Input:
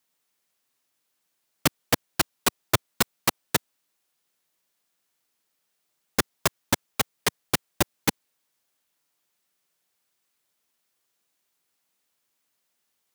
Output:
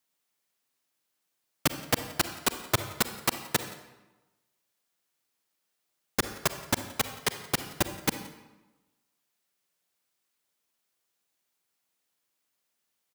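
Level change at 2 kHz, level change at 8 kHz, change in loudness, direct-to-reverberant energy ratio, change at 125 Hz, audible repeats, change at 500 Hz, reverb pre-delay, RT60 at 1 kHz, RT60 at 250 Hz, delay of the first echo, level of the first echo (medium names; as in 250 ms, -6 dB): -3.5 dB, -3.5 dB, -3.5 dB, 9.0 dB, -3.5 dB, 1, -3.5 dB, 39 ms, 1.1 s, 1.2 s, 173 ms, -22.0 dB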